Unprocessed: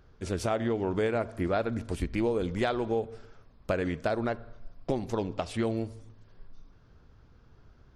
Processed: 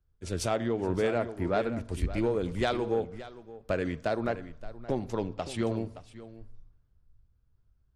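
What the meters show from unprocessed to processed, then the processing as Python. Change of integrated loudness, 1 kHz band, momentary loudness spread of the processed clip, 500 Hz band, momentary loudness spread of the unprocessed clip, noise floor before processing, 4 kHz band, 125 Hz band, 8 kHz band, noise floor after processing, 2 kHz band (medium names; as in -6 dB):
-0.5 dB, -0.5 dB, 17 LU, 0.0 dB, 8 LU, -58 dBFS, +1.5 dB, -0.5 dB, +3.0 dB, -69 dBFS, -0.5 dB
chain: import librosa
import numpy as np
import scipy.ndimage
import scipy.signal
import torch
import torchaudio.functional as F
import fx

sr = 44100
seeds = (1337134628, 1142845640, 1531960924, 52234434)

p1 = 10.0 ** (-18.0 / 20.0) * np.tanh(x / 10.0 ** (-18.0 / 20.0))
p2 = p1 + fx.echo_single(p1, sr, ms=572, db=-10.0, dry=0)
y = fx.band_widen(p2, sr, depth_pct=70)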